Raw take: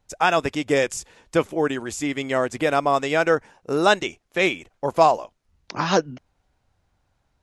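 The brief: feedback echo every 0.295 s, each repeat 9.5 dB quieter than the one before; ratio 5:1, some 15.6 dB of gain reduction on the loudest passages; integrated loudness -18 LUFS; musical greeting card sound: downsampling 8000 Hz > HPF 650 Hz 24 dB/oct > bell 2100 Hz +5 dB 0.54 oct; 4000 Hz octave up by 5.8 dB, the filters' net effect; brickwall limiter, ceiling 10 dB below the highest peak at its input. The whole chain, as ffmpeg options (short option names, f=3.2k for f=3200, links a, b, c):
-af "equalizer=f=4k:t=o:g=6.5,acompressor=threshold=-28dB:ratio=5,alimiter=limit=-23.5dB:level=0:latency=1,aecho=1:1:295|590|885|1180:0.335|0.111|0.0365|0.012,aresample=8000,aresample=44100,highpass=f=650:w=0.5412,highpass=f=650:w=1.3066,equalizer=f=2.1k:t=o:w=0.54:g=5,volume=19dB"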